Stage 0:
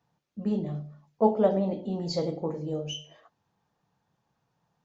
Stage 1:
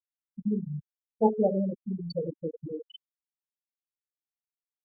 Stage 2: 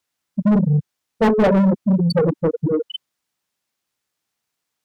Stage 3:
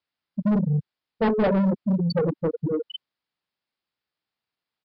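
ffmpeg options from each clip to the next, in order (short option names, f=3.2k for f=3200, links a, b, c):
-af "afftfilt=real='re*gte(hypot(re,im),0.2)':imag='im*gte(hypot(re,im),0.2)':win_size=1024:overlap=0.75,anlmdn=0.0398,equalizer=f=660:t=o:w=0.37:g=-5"
-filter_complex "[0:a]bass=f=250:g=14,treble=f=4k:g=7,asplit=2[a][b];[b]highpass=f=720:p=1,volume=30dB,asoftclip=type=tanh:threshold=-4.5dB[c];[a][c]amix=inputs=2:normalize=0,lowpass=f=2k:p=1,volume=-6dB,volume=10dB,asoftclip=hard,volume=-10dB,volume=-1.5dB"
-af "aresample=11025,aresample=44100,volume=-6dB"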